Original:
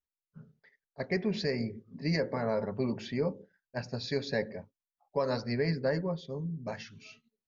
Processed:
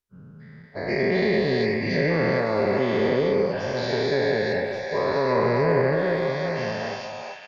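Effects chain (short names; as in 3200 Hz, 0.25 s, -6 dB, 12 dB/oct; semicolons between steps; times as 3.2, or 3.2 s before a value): spectral dilation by 0.48 s; delay with a stepping band-pass 0.375 s, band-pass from 870 Hz, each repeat 1.4 oct, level -0.5 dB; treble ducked by the level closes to 2400 Hz, closed at -17.5 dBFS; bell 400 Hz +5 dB 0.25 oct; speakerphone echo 0.38 s, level -11 dB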